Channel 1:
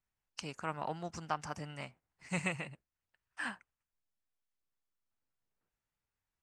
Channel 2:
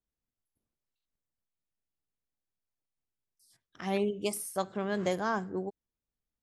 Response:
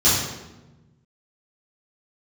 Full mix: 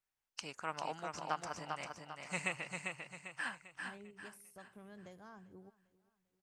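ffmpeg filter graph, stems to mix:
-filter_complex "[0:a]lowshelf=f=290:g=-12,volume=0.944,asplit=2[s0][s1];[s1]volume=0.596[s2];[1:a]acompressor=threshold=0.0126:ratio=2,asubboost=boost=2.5:cutoff=190,volume=0.133,asplit=2[s3][s4];[s4]volume=0.0891[s5];[s2][s5]amix=inputs=2:normalize=0,aecho=0:1:397|794|1191|1588|1985|2382:1|0.4|0.16|0.064|0.0256|0.0102[s6];[s0][s3][s6]amix=inputs=3:normalize=0"

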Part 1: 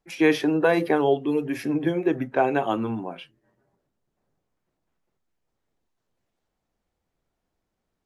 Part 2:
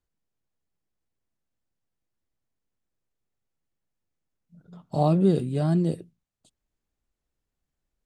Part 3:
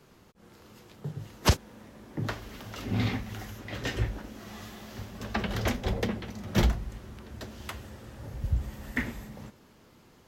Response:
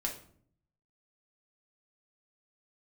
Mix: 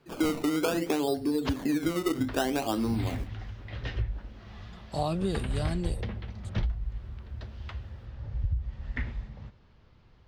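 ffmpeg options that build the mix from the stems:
-filter_complex "[0:a]acrusher=samples=18:mix=1:aa=0.000001:lfo=1:lforange=18:lforate=0.61,equalizer=f=260:t=o:w=0.44:g=9,volume=0.631,asplit=2[s0][s1];[s1]volume=0.211[s2];[1:a]tiltshelf=f=970:g=-7.5,volume=0.891[s3];[2:a]lowpass=f=4600:w=0.5412,lowpass=f=4600:w=1.3066,asubboost=boost=6.5:cutoff=97,alimiter=limit=0.282:level=0:latency=1:release=372,volume=0.531[s4];[3:a]atrim=start_sample=2205[s5];[s2][s5]afir=irnorm=-1:irlink=0[s6];[s0][s3][s4][s6]amix=inputs=4:normalize=0,acompressor=threshold=0.0562:ratio=4"

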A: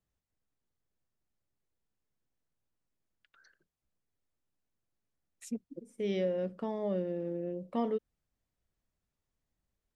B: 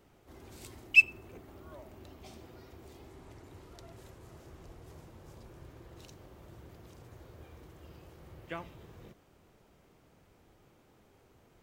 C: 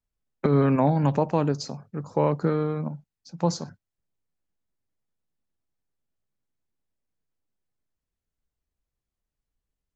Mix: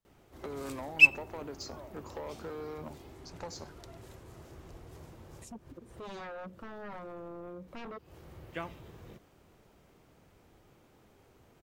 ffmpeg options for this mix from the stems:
-filter_complex "[0:a]aeval=exprs='0.1*sin(PI/2*4.47*val(0)/0.1)':c=same,volume=0.1,asplit=2[s0][s1];[1:a]adelay=50,volume=1.19[s2];[2:a]highpass=360,acompressor=threshold=0.0224:ratio=10,asoftclip=type=tanh:threshold=0.0237,volume=0.841[s3];[s1]apad=whole_len=514664[s4];[s2][s4]sidechaincompress=threshold=0.00126:ratio=10:attack=44:release=170[s5];[s0][s5][s3]amix=inputs=3:normalize=0"

